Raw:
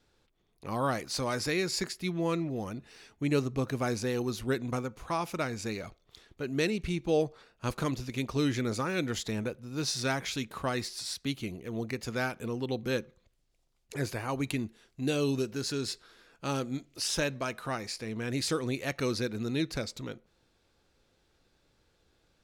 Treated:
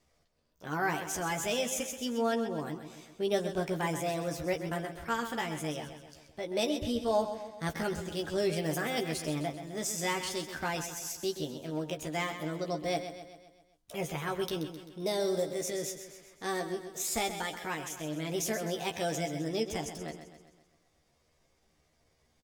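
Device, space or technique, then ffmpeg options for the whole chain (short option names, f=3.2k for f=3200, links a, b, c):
chipmunk voice: -filter_complex "[0:a]asetrate=60591,aresample=44100,atempo=0.727827,asettb=1/sr,asplit=3[a][b][c];[a]atrim=end=8.564[d];[b]atrim=start=8.56:end=9.09,asetpts=PTS-STARTPTS,afade=t=in:d=0.004:c=qsin,afade=t=out:st=0.526:d=0.004:c=qsin,highshelf=f=11k:g=10.5[e];[c]atrim=start=9.086[f];[d][e]acrossfade=d=0.004:c1=hsin:c2=qsin[g];[g][f]acrossfade=d=0.004:c1=qsin:c2=hsin,asplit=2[h][i];[i]adelay=13,volume=-5dB[j];[h][j]amix=inputs=2:normalize=0,aecho=1:1:130|260|390|520|650|780:0.316|0.168|0.0888|0.0471|0.025|0.0132,volume=-3dB"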